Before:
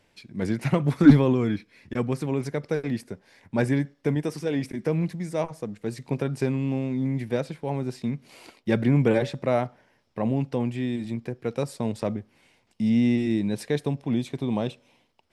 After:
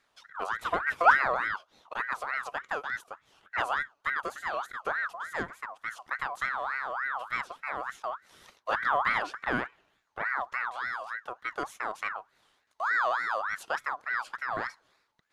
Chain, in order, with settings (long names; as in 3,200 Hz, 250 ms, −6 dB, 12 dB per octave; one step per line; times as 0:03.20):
0:04.35–0:05.11: frequency shifter −21 Hz
tape wow and flutter 20 cents
ring modulator whose carrier an LFO sweeps 1,300 Hz, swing 35%, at 3.4 Hz
level −4 dB